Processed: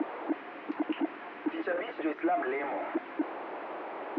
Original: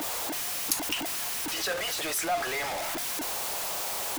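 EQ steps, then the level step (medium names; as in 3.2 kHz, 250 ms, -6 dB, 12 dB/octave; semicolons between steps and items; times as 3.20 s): resonant high-pass 310 Hz, resonance Q 3.8; low-pass 2.2 kHz 24 dB/octave; distance through air 200 m; -2.0 dB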